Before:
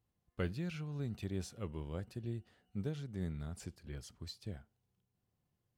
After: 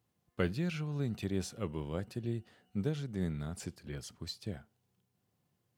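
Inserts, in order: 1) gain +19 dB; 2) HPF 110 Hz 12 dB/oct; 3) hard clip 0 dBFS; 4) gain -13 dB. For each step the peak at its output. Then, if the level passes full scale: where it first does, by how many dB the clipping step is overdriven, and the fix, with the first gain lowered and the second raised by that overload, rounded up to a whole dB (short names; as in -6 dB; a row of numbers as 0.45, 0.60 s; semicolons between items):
-4.0, -2.5, -2.5, -15.5 dBFS; no overload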